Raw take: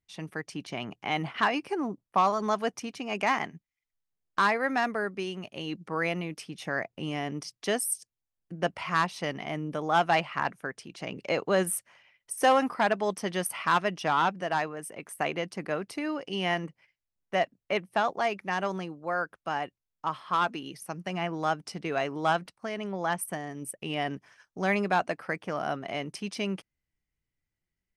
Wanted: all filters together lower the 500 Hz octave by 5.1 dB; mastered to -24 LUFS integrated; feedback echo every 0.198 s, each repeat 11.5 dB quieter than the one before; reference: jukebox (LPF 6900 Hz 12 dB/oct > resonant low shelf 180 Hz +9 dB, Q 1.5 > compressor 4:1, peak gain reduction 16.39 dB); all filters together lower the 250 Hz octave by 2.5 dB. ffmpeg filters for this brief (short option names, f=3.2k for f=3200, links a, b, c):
-af "lowpass=6.9k,lowshelf=f=180:t=q:w=1.5:g=9,equalizer=f=250:t=o:g=-5.5,equalizer=f=500:t=o:g=-4.5,aecho=1:1:198|396|594:0.266|0.0718|0.0194,acompressor=threshold=-40dB:ratio=4,volume=18.5dB"